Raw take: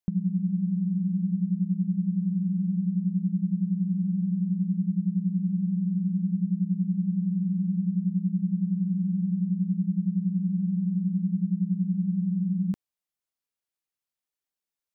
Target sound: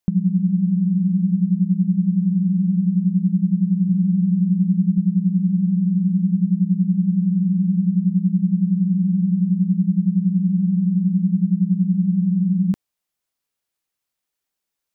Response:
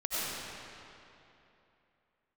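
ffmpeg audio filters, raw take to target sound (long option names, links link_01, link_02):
-filter_complex "[0:a]asettb=1/sr,asplit=3[link_01][link_02][link_03];[link_01]atrim=end=3.884[link_04];[link_02]atrim=start=3.88:end=4.98,asetpts=PTS-STARTPTS,afade=type=in:duration=0.004:curve=qsin,afade=type=out:start_time=1.096:duration=0.004:curve=qsin,equalizer=frequency=130:width=7.6:gain=14.5[link_05];[link_03]atrim=start=4.976[link_06];[link_04][link_05]acrossfade=duration=0.004:curve1=hsin:curve2=qsin[link_07];[link_07][link_06]acrossfade=duration=0.004:curve1=qsin:curve2=hsin,volume=8dB"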